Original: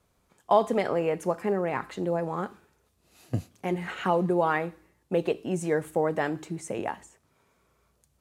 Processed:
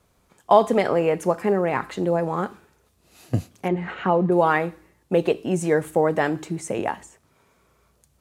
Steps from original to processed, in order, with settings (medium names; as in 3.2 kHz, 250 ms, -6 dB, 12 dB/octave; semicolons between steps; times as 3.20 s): 3.68–4.32 s: tape spacing loss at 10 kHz 23 dB; trim +6 dB